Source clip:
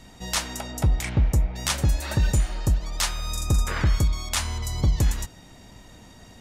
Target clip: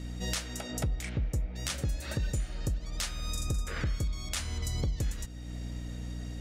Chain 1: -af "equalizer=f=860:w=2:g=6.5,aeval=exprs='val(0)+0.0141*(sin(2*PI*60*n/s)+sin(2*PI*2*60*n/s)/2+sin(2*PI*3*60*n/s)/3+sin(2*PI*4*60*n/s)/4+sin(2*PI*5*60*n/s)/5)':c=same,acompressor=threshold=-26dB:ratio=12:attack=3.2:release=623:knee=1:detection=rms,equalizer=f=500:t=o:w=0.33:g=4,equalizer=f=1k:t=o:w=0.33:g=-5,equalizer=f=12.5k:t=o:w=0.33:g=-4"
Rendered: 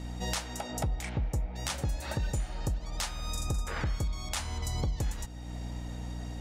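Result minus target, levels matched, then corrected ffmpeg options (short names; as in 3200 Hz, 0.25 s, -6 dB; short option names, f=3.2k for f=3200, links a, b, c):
1000 Hz band +6.5 dB
-af "equalizer=f=860:w=2:g=-5,aeval=exprs='val(0)+0.0141*(sin(2*PI*60*n/s)+sin(2*PI*2*60*n/s)/2+sin(2*PI*3*60*n/s)/3+sin(2*PI*4*60*n/s)/4+sin(2*PI*5*60*n/s)/5)':c=same,acompressor=threshold=-26dB:ratio=12:attack=3.2:release=623:knee=1:detection=rms,equalizer=f=500:t=o:w=0.33:g=4,equalizer=f=1k:t=o:w=0.33:g=-5,equalizer=f=12.5k:t=o:w=0.33:g=-4"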